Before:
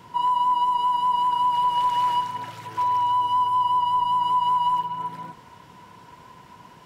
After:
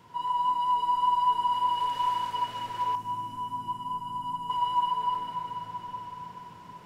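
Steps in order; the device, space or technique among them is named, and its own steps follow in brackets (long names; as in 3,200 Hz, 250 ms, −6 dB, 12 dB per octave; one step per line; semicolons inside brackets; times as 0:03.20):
cathedral (convolution reverb RT60 5.3 s, pre-delay 62 ms, DRR −2.5 dB)
0:02.95–0:04.50: octave-band graphic EQ 250/500/1,000/2,000/4,000 Hz +10/−12/−5/−8/−10 dB
level −8 dB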